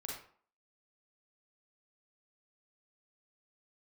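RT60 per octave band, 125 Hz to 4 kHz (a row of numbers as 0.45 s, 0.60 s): 0.40 s, 0.50 s, 0.50 s, 0.50 s, 0.40 s, 0.35 s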